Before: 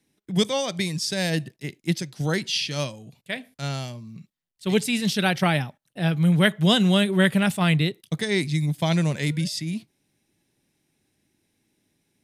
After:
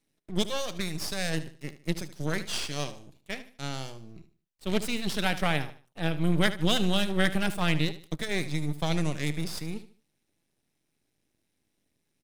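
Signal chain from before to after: half-wave rectifier; feedback echo 75 ms, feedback 31%, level -14 dB; gain -3 dB

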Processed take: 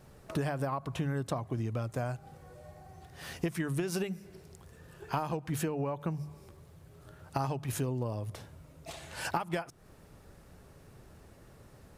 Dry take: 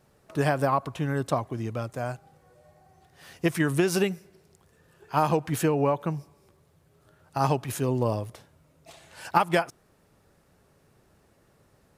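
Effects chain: low shelf 120 Hz +10 dB; notches 50/100/150/200 Hz; compressor 16:1, threshold -34 dBFS, peak gain reduction 19.5 dB; gain +4.5 dB

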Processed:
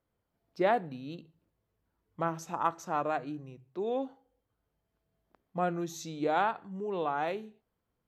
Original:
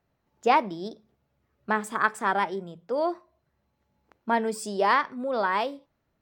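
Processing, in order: notches 50/100/150/200 Hz; varispeed -23%; gain -6.5 dB

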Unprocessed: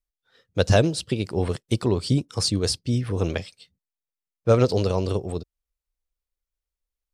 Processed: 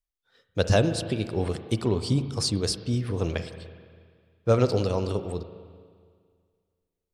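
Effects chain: spring tank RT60 2 s, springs 36/58 ms, chirp 70 ms, DRR 9.5 dB; gain -3 dB

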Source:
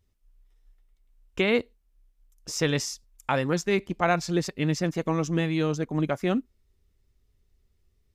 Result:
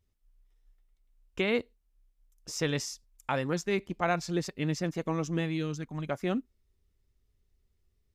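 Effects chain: 5.56–6.06 bell 970 Hz -> 310 Hz -11.5 dB 1.3 oct; gain -5 dB

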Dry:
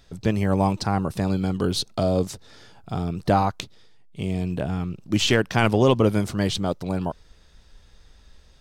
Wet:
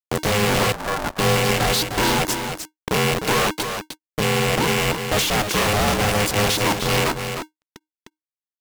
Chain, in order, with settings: rattling part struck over -27 dBFS, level -12 dBFS; reverb removal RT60 1.5 s; 3.56–4.63 compressor, threshold -27 dBFS, peak gain reduction 6.5 dB; fuzz box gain 45 dB, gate -41 dBFS; added harmonics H 4 -10 dB, 7 -27 dB, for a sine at -9 dBFS; echo 0.305 s -7.5 dB; upward compressor, threshold -31 dBFS; 0.72–1.19 brick-wall FIR band-pass 230–1500 Hz; polarity switched at an audio rate 310 Hz; gain -6 dB

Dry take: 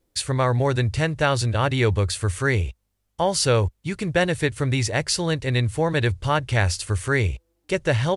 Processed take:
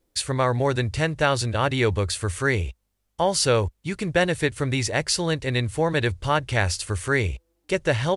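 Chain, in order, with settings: bell 110 Hz -4.5 dB 0.89 oct

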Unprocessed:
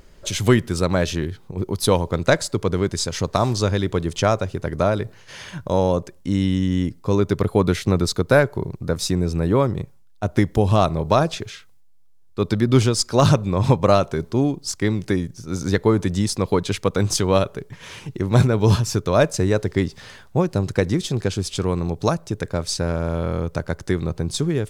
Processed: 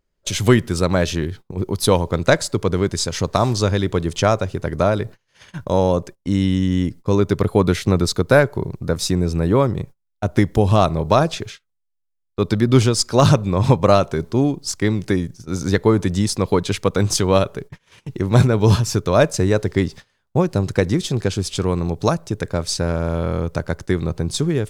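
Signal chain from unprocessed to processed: gate -35 dBFS, range -27 dB; gain +2 dB

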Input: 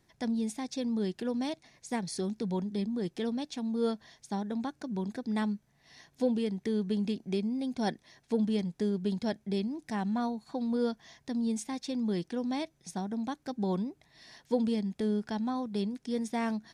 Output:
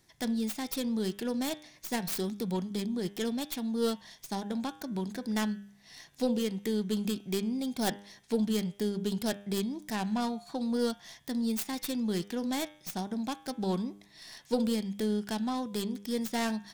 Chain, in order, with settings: tracing distortion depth 0.28 ms; high shelf 2500 Hz +8.5 dB; de-hum 100.8 Hz, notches 37

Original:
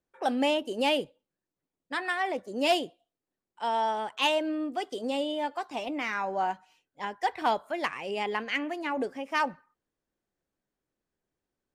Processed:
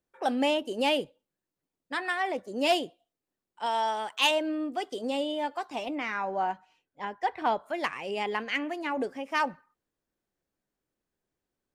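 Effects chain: 3.66–4.31 tilt +2 dB/oct; 5.94–7.65 LPF 3800 Hz -> 2100 Hz 6 dB/oct

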